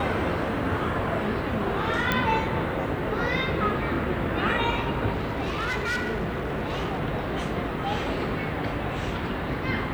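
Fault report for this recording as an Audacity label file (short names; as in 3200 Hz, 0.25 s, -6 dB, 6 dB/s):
2.120000	2.120000	pop -9 dBFS
5.130000	7.010000	clipped -24 dBFS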